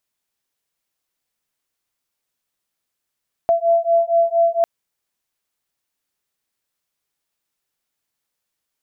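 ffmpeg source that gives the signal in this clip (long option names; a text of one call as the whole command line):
ffmpeg -f lavfi -i "aevalsrc='0.15*(sin(2*PI*672*t)+sin(2*PI*676.3*t))':duration=1.15:sample_rate=44100" out.wav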